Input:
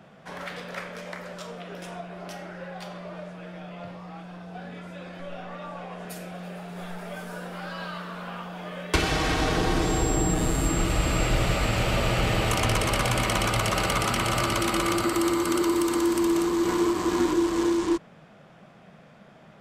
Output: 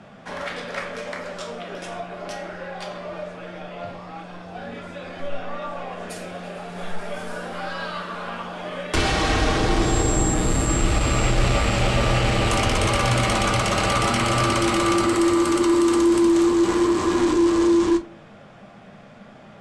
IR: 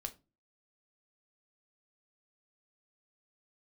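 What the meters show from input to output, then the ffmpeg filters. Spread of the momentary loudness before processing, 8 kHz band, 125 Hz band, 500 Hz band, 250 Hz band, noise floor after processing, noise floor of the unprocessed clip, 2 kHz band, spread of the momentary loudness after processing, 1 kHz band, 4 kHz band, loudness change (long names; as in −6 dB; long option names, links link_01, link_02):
16 LU, +3.5 dB, +4.0 dB, +5.0 dB, +5.5 dB, −45 dBFS, −52 dBFS, +3.5 dB, 16 LU, +4.5 dB, +3.5 dB, +4.5 dB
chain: -filter_complex "[0:a]aeval=exprs='0.299*(cos(1*acos(clip(val(0)/0.299,-1,1)))-cos(1*PI/2))+0.0944*(cos(5*acos(clip(val(0)/0.299,-1,1)))-cos(5*PI/2))':channel_layout=same,lowpass=frequency=10000:width=0.5412,lowpass=frequency=10000:width=1.3066[link_01];[1:a]atrim=start_sample=2205[link_02];[link_01][link_02]afir=irnorm=-1:irlink=0"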